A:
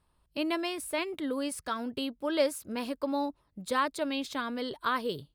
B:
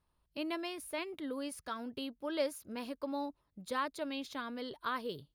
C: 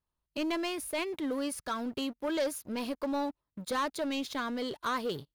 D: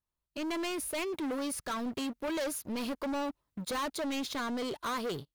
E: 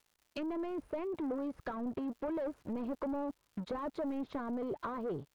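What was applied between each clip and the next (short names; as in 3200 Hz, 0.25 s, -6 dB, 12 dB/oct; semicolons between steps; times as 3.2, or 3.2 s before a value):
notch 8000 Hz, Q 5.3; gain -7 dB
sample leveller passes 3; gain -3.5 dB
AGC gain up to 10 dB; soft clip -26.5 dBFS, distortion -10 dB; gain -5 dB
treble ducked by the level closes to 820 Hz, closed at -33.5 dBFS; harmonic-percussive split harmonic -3 dB; crackle 210/s -57 dBFS; gain +1 dB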